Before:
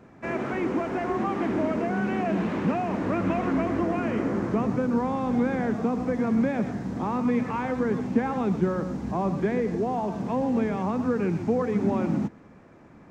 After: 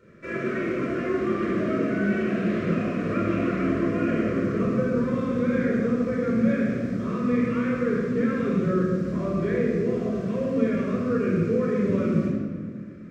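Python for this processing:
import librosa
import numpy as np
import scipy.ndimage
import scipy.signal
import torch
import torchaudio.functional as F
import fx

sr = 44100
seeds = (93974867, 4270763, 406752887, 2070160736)

y = scipy.signal.sosfilt(scipy.signal.cheby1(2, 1.0, [600.0, 1200.0], 'bandstop', fs=sr, output='sos'), x)
y = fx.low_shelf(y, sr, hz=240.0, db=-5.5)
y = fx.room_shoebox(y, sr, seeds[0], volume_m3=1900.0, walls='mixed', distance_m=4.5)
y = y * librosa.db_to_amplitude(-4.5)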